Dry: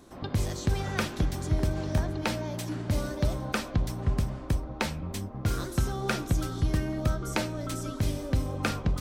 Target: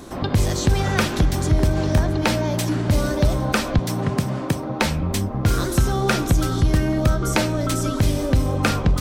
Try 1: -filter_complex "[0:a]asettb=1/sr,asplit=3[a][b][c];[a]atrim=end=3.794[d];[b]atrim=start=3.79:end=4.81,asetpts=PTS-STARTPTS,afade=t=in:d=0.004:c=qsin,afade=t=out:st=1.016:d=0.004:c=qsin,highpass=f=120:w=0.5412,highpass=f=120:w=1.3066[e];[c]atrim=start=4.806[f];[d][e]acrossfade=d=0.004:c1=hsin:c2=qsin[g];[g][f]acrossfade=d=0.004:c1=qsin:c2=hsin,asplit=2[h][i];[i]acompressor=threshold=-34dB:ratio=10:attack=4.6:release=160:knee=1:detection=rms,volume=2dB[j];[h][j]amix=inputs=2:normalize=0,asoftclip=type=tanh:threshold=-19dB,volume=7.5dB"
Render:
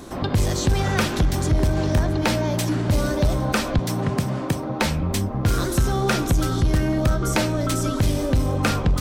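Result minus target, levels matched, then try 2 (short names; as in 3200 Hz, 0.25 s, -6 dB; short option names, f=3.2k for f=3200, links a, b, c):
soft clip: distortion +9 dB
-filter_complex "[0:a]asettb=1/sr,asplit=3[a][b][c];[a]atrim=end=3.794[d];[b]atrim=start=3.79:end=4.81,asetpts=PTS-STARTPTS,afade=t=in:d=0.004:c=qsin,afade=t=out:st=1.016:d=0.004:c=qsin,highpass=f=120:w=0.5412,highpass=f=120:w=1.3066[e];[c]atrim=start=4.806[f];[d][e]acrossfade=d=0.004:c1=hsin:c2=qsin[g];[g][f]acrossfade=d=0.004:c1=qsin:c2=hsin,asplit=2[h][i];[i]acompressor=threshold=-34dB:ratio=10:attack=4.6:release=160:knee=1:detection=rms,volume=2dB[j];[h][j]amix=inputs=2:normalize=0,asoftclip=type=tanh:threshold=-13dB,volume=7.5dB"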